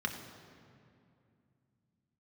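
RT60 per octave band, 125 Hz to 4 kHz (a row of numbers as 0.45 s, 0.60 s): 3.9 s, 3.6 s, 2.6 s, 2.4 s, 2.1 s, 1.6 s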